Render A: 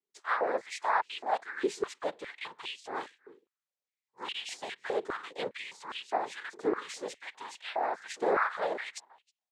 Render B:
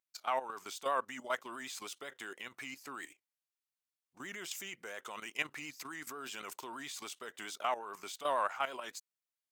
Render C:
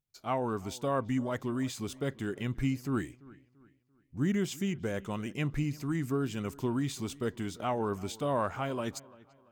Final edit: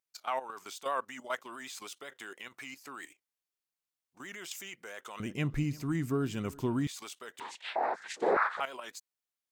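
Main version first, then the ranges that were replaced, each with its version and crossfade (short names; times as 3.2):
B
5.2–6.87 from C
7.4–8.6 from A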